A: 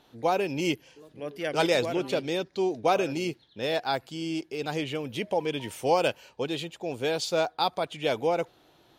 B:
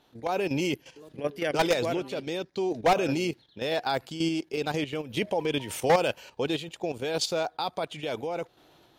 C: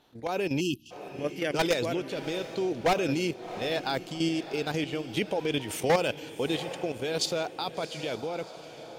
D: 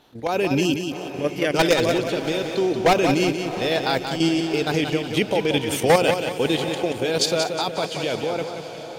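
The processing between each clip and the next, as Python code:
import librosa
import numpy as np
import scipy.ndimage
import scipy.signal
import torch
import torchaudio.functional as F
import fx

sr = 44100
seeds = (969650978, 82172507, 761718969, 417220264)

y1 = fx.level_steps(x, sr, step_db=11)
y1 = np.clip(y1, -10.0 ** (-23.5 / 20.0), 10.0 ** (-23.5 / 20.0))
y1 = fx.tremolo_random(y1, sr, seeds[0], hz=3.5, depth_pct=55)
y1 = F.gain(torch.from_numpy(y1), 8.5).numpy()
y2 = fx.echo_diffused(y1, sr, ms=722, feedback_pct=44, wet_db=-13.5)
y2 = fx.spec_erase(y2, sr, start_s=0.61, length_s=0.3, low_hz=370.0, high_hz=2500.0)
y2 = fx.dynamic_eq(y2, sr, hz=830.0, q=1.1, threshold_db=-36.0, ratio=4.0, max_db=-4)
y3 = fx.echo_feedback(y2, sr, ms=181, feedback_pct=41, wet_db=-7.0)
y3 = F.gain(torch.from_numpy(y3), 7.5).numpy()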